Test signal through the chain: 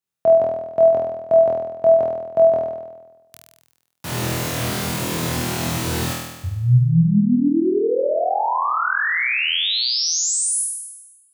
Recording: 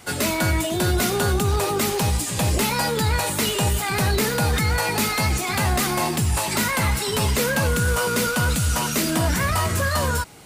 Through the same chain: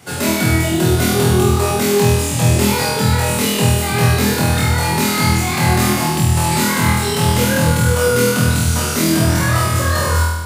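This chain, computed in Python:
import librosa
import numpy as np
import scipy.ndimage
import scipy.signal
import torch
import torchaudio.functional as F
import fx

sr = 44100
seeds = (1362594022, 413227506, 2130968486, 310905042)

p1 = scipy.signal.sosfilt(scipy.signal.butter(4, 98.0, 'highpass', fs=sr, output='sos'), x)
p2 = fx.low_shelf(p1, sr, hz=220.0, db=9.5)
p3 = p2 + fx.room_flutter(p2, sr, wall_m=4.2, rt60_s=1.1, dry=0)
y = p3 * librosa.db_to_amplitude(-1.0)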